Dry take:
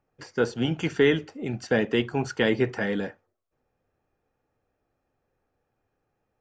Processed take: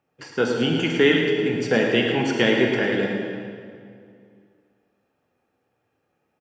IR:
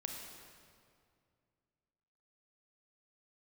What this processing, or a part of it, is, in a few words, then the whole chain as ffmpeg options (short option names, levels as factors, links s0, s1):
PA in a hall: -filter_complex "[0:a]highpass=120,equalizer=f=2800:t=o:w=0.75:g=5.5,aecho=1:1:109:0.376[s0];[1:a]atrim=start_sample=2205[s1];[s0][s1]afir=irnorm=-1:irlink=0,volume=1.78"